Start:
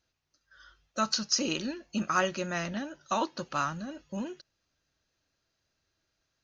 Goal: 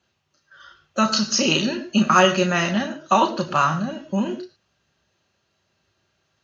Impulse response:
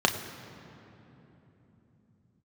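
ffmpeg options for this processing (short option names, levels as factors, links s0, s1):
-filter_complex "[0:a]asettb=1/sr,asplit=3[s0][s1][s2];[s0]atrim=end=1.404[s3];[s1]atrim=start=1.4:end=2.86,asetpts=PTS-STARTPTS,afade=t=in:d=0.004:c=qsin,afade=t=out:st=1.456:d=0.004:c=qsin,equalizer=f=5500:w=0.38:g=4[s4];[s2]atrim=start=2.856[s5];[s3][s4]acrossfade=d=0.004:c1=hsin:c2=qsin[s6];[s6][s5]acrossfade=d=0.004:c1=qsin:c2=hsin[s7];[1:a]atrim=start_sample=2205,afade=t=out:st=0.2:d=0.01,atrim=end_sample=9261[s8];[s7][s8]afir=irnorm=-1:irlink=0,volume=0.75"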